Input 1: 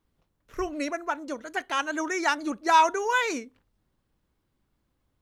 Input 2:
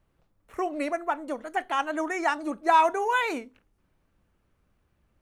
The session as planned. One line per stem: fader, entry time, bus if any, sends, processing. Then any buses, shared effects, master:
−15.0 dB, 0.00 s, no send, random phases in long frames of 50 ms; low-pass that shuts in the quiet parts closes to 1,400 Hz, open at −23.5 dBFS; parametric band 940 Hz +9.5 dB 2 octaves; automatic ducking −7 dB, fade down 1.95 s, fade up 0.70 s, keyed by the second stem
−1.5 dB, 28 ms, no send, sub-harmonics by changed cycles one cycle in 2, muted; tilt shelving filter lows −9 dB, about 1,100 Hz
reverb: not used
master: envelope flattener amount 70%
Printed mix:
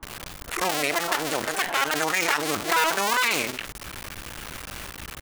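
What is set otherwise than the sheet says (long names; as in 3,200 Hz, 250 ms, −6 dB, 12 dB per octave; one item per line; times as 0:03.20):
stem 1 −15.0 dB → −24.0 dB
stem 2: polarity flipped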